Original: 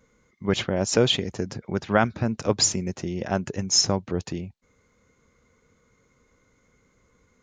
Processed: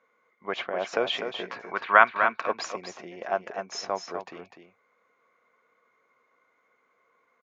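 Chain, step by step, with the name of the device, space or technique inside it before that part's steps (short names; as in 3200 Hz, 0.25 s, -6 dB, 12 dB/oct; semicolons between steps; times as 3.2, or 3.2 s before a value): tin-can telephone (BPF 650–2200 Hz; small resonant body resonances 690/1100/2300 Hz, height 7 dB); 1.43–2.47 spectral gain 900–4700 Hz +9 dB; 1.11–1.7 doubler 17 ms -2 dB; echo 0.249 s -7.5 dB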